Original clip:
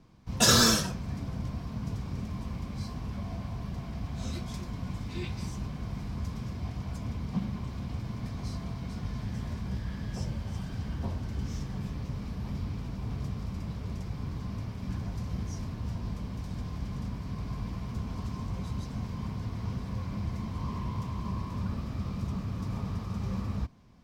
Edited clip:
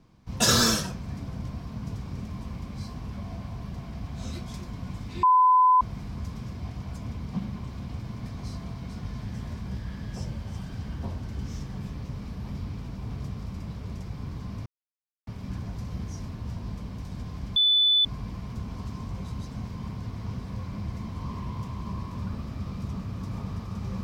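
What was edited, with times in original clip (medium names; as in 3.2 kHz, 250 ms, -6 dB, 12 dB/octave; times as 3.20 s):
5.23–5.81 s: bleep 1.01 kHz -15 dBFS
14.66 s: insert silence 0.61 s
16.95–17.44 s: bleep 3.49 kHz -17.5 dBFS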